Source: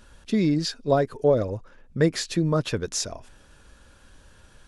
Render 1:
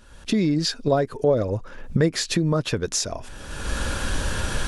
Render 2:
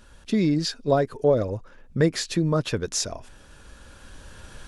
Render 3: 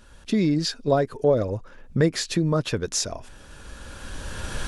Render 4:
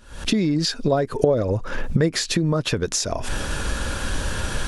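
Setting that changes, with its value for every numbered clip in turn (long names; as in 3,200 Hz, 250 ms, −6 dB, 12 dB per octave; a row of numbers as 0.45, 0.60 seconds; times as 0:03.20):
camcorder AGC, rising by: 33, 5.2, 13, 91 dB per second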